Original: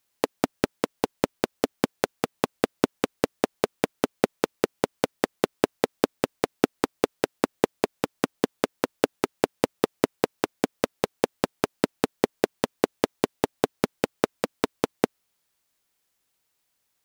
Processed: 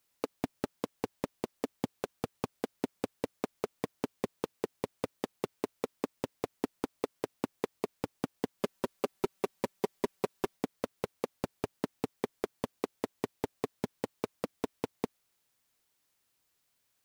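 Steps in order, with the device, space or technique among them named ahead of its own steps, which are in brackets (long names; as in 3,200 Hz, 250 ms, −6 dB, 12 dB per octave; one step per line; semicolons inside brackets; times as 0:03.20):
open-reel tape (soft clipping −14.5 dBFS, distortion −7 dB; parametric band 110 Hz +5 dB 0.93 octaves; white noise bed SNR 40 dB)
0:08.59–0:10.57: comb filter 5.2 ms, depth 94%
level −5.5 dB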